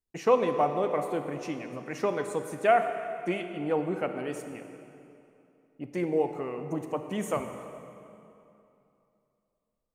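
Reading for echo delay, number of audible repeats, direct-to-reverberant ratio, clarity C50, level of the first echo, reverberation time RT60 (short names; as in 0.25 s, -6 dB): none, none, 6.5 dB, 7.0 dB, none, 2.8 s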